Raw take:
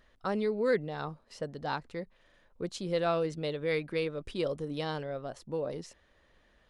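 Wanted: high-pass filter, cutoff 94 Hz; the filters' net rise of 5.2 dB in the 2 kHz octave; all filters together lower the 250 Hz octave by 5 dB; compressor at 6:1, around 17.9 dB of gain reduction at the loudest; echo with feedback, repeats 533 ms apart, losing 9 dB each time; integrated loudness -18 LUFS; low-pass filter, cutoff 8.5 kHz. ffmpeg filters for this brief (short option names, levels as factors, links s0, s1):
-af "highpass=94,lowpass=8500,equalizer=f=250:t=o:g=-7.5,equalizer=f=2000:t=o:g=6.5,acompressor=threshold=0.00631:ratio=6,aecho=1:1:533|1066|1599|2132:0.355|0.124|0.0435|0.0152,volume=29.9"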